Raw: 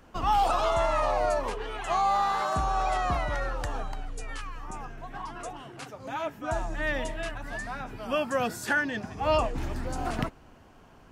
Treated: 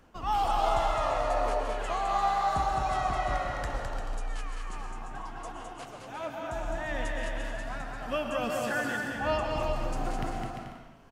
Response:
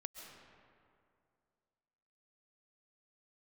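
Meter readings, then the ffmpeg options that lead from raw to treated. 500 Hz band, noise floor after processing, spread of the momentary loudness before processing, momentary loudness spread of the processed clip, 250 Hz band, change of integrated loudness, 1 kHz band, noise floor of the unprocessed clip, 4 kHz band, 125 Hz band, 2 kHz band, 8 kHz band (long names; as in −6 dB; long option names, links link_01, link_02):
−2.0 dB, −46 dBFS, 15 LU, 14 LU, −2.0 dB, −2.0 dB, −1.5 dB, −54 dBFS, −2.0 dB, −2.0 dB, −3.0 dB, −2.5 dB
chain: -filter_complex "[0:a]tremolo=f=2.7:d=0.4,aecho=1:1:210|346.5|435.2|492.9|530.4:0.631|0.398|0.251|0.158|0.1[link_01];[1:a]atrim=start_sample=2205,afade=type=out:start_time=0.34:duration=0.01,atrim=end_sample=15435,asetrate=48510,aresample=44100[link_02];[link_01][link_02]afir=irnorm=-1:irlink=0,volume=2.5dB"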